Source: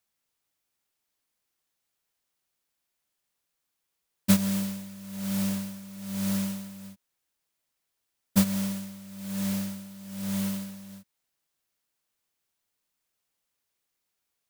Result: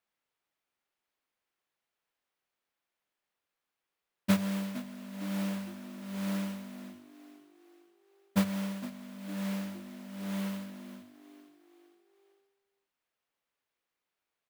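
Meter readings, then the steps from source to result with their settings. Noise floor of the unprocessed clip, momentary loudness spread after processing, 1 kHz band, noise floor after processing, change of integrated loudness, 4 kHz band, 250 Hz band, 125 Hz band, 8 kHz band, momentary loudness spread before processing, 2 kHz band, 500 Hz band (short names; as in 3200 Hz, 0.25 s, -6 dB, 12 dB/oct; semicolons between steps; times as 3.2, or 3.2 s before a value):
-82 dBFS, 18 LU, 0.0 dB, under -85 dBFS, -6.0 dB, -6.0 dB, -5.0 dB, -5.5 dB, -12.0 dB, 16 LU, -1.0 dB, 0.0 dB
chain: tone controls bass -7 dB, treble -13 dB; notches 50/100 Hz; frequency-shifting echo 0.459 s, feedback 47%, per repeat +50 Hz, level -15 dB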